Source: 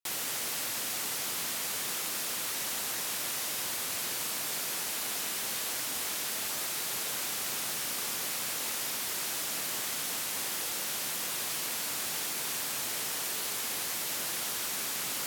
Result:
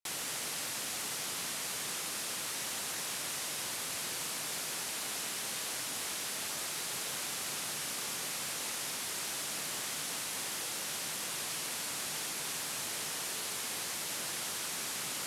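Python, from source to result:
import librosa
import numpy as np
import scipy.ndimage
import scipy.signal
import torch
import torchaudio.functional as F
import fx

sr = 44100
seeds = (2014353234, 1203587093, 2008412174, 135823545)

y = scipy.signal.sosfilt(scipy.signal.butter(4, 12000.0, 'lowpass', fs=sr, output='sos'), x)
y = fx.peak_eq(y, sr, hz=150.0, db=3.5, octaves=0.4)
y = y * librosa.db_to_amplitude(-2.5)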